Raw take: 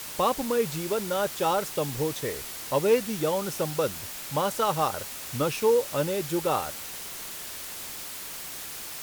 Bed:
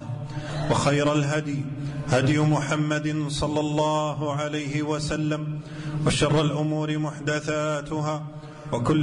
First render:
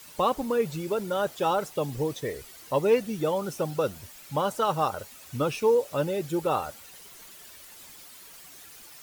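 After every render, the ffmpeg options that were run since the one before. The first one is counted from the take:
ffmpeg -i in.wav -af "afftdn=noise_reduction=12:noise_floor=-38" out.wav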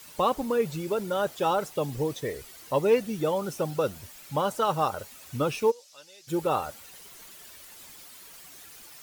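ffmpeg -i in.wav -filter_complex "[0:a]asplit=3[link_01][link_02][link_03];[link_01]afade=type=out:start_time=5.7:duration=0.02[link_04];[link_02]bandpass=frequency=5400:width_type=q:width=2.2,afade=type=in:start_time=5.7:duration=0.02,afade=type=out:start_time=6.27:duration=0.02[link_05];[link_03]afade=type=in:start_time=6.27:duration=0.02[link_06];[link_04][link_05][link_06]amix=inputs=3:normalize=0" out.wav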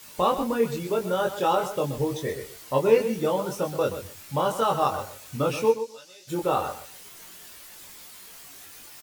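ffmpeg -i in.wav -filter_complex "[0:a]asplit=2[link_01][link_02];[link_02]adelay=22,volume=-2.5dB[link_03];[link_01][link_03]amix=inputs=2:normalize=0,aecho=1:1:127|254:0.282|0.0479" out.wav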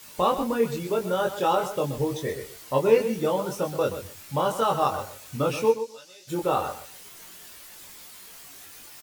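ffmpeg -i in.wav -af anull out.wav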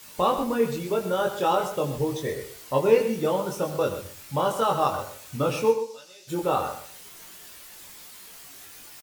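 ffmpeg -i in.wav -af "aecho=1:1:80:0.211" out.wav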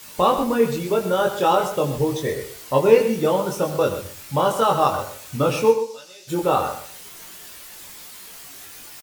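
ffmpeg -i in.wav -af "volume=5dB" out.wav

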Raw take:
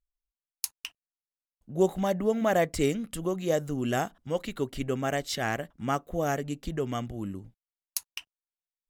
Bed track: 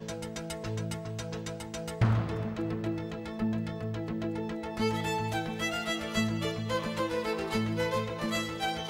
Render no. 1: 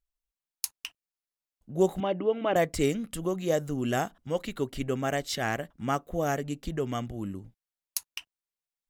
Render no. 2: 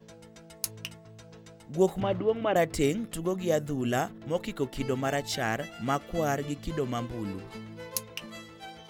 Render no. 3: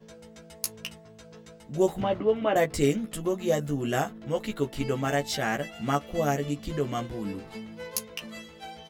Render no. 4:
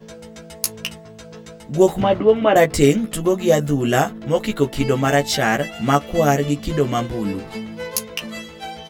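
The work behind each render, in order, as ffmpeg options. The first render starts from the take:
ffmpeg -i in.wav -filter_complex "[0:a]asettb=1/sr,asplit=3[link_01][link_02][link_03];[link_01]atrim=end=2.004[link_04];[link_02]atrim=start=2:end=2.56,asetpts=PTS-STARTPTS,afade=type=in:duration=0.004:curve=qsin,afade=type=out:start_time=0.556:duration=0.004:curve=qsin,highpass=140,equalizer=frequency=220:width_type=q:width=4:gain=-9,equalizer=frequency=320:width_type=q:width=4:gain=9,equalizer=frequency=670:width_type=q:width=4:gain=-3,equalizer=frequency=1800:width_type=q:width=4:gain=-8,equalizer=frequency=2900:width_type=q:width=4:gain=7,lowpass=frequency=3200:width=0.5412,lowpass=frequency=3200:width=1.3066[link_05];[link_03]atrim=start=2.556[link_06];[link_04][link_05]acrossfade=duration=0.004:curve1=hsin:curve2=qsin[link_07];[link_07][link_06]acrossfade=duration=0.004:curve1=qsin:curve2=hsin" out.wav
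ffmpeg -i in.wav -i bed.wav -filter_complex "[1:a]volume=-12.5dB[link_01];[0:a][link_01]amix=inputs=2:normalize=0" out.wav
ffmpeg -i in.wav -filter_complex "[0:a]asplit=2[link_01][link_02];[link_02]adelay=14,volume=-4dB[link_03];[link_01][link_03]amix=inputs=2:normalize=0" out.wav
ffmpeg -i in.wav -af "volume=10dB,alimiter=limit=-2dB:level=0:latency=1" out.wav

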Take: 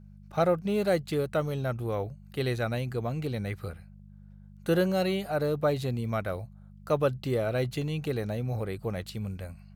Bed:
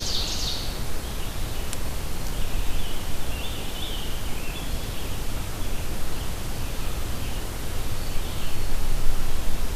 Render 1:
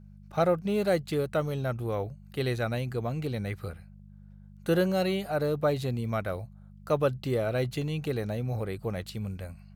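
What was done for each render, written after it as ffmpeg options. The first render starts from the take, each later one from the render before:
ffmpeg -i in.wav -af anull out.wav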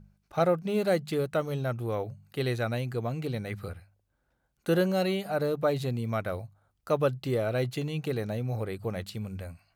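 ffmpeg -i in.wav -af "bandreject=frequency=50:width_type=h:width=4,bandreject=frequency=100:width_type=h:width=4,bandreject=frequency=150:width_type=h:width=4,bandreject=frequency=200:width_type=h:width=4" out.wav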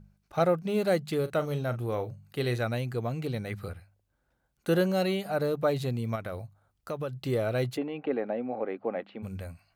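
ffmpeg -i in.wav -filter_complex "[0:a]asettb=1/sr,asplit=3[link_01][link_02][link_03];[link_01]atrim=end=1.204[link_04];[link_02]atrim=start=1.2:end=2.61,asetpts=PTS-STARTPTS,afade=type=in:duration=0.004:curve=qsin,afade=type=out:start_time=1.406:duration=0.004:curve=qsin,asplit=2[link_05][link_06];[link_06]adelay=41,volume=-12.5dB[link_07];[link_05][link_07]amix=inputs=2:normalize=0,atrim=end_sample=62181[link_08];[link_03]atrim=start=2.606[link_09];[link_04][link_08]acrossfade=duration=0.004:curve1=hsin:curve2=qsin[link_10];[link_10][link_09]acrossfade=duration=0.004:curve1=qsin:curve2=hsin,asettb=1/sr,asplit=3[link_11][link_12][link_13];[link_11]atrim=end=6.154[link_14];[link_12]atrim=start=6.15:end=7.17,asetpts=PTS-STARTPTS,afade=type=in:duration=0.004:curve=qsin,afade=type=out:start_time=1.016:duration=0.004:curve=qsin,acompressor=threshold=-32dB:ratio=3:attack=3.2:release=140:knee=1:detection=peak[link_15];[link_13]atrim=start=7.166[link_16];[link_14][link_15]acrossfade=duration=0.004:curve1=hsin:curve2=qsin[link_17];[link_17][link_16]acrossfade=duration=0.004:curve1=qsin:curve2=hsin,asplit=3[link_18][link_19][link_20];[link_18]afade=type=out:start_time=7.76:duration=0.02[link_21];[link_19]highpass=frequency=240:width=0.5412,highpass=frequency=240:width=1.3066,equalizer=frequency=260:width_type=q:width=4:gain=8,equalizer=frequency=550:width_type=q:width=4:gain=5,equalizer=frequency=790:width_type=q:width=4:gain=7,lowpass=frequency=2500:width=0.5412,lowpass=frequency=2500:width=1.3066,afade=type=in:start_time=7.76:duration=0.02,afade=type=out:start_time=9.22:duration=0.02[link_22];[link_20]afade=type=in:start_time=9.22:duration=0.02[link_23];[link_21][link_22][link_23]amix=inputs=3:normalize=0" out.wav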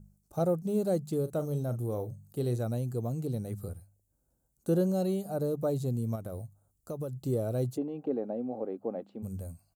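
ffmpeg -i in.wav -filter_complex "[0:a]acrossover=split=5600[link_01][link_02];[link_02]acompressor=threshold=-58dB:ratio=4:attack=1:release=60[link_03];[link_01][link_03]amix=inputs=2:normalize=0,firequalizer=gain_entry='entry(250,0);entry(2000,-23);entry(7300,8)':delay=0.05:min_phase=1" out.wav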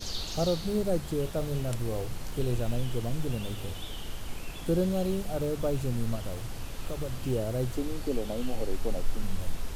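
ffmpeg -i in.wav -i bed.wav -filter_complex "[1:a]volume=-9dB[link_01];[0:a][link_01]amix=inputs=2:normalize=0" out.wav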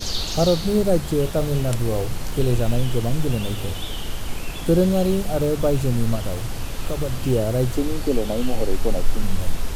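ffmpeg -i in.wav -af "volume=9.5dB" out.wav

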